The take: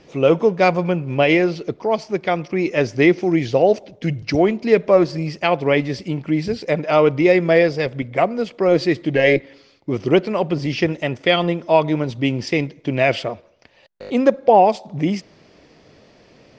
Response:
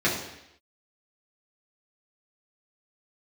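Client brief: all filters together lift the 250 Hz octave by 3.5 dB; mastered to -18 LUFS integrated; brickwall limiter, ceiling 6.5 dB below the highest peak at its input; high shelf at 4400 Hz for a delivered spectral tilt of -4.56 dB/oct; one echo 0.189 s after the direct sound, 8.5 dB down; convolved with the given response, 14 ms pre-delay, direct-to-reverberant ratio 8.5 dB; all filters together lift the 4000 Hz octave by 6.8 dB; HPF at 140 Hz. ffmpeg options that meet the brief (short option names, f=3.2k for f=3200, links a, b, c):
-filter_complex "[0:a]highpass=140,equalizer=f=250:t=o:g=5.5,equalizer=f=4k:t=o:g=5.5,highshelf=f=4.4k:g=7.5,alimiter=limit=-6dB:level=0:latency=1,aecho=1:1:189:0.376,asplit=2[a][b];[1:a]atrim=start_sample=2205,adelay=14[c];[b][c]afir=irnorm=-1:irlink=0,volume=-23dB[d];[a][d]amix=inputs=2:normalize=0,volume=-1dB"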